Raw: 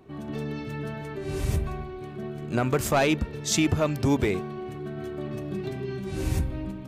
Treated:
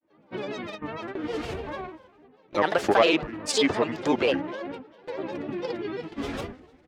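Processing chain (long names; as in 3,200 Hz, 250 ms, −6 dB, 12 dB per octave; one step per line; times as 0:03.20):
pitch vibrato 6.4 Hz 59 cents
three-way crossover with the lows and the highs turned down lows −20 dB, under 290 Hz, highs −22 dB, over 4,600 Hz
noise gate with hold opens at −30 dBFS
repeating echo 221 ms, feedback 42%, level −21.5 dB
granular cloud, spray 35 ms, pitch spread up and down by 7 semitones
level +5.5 dB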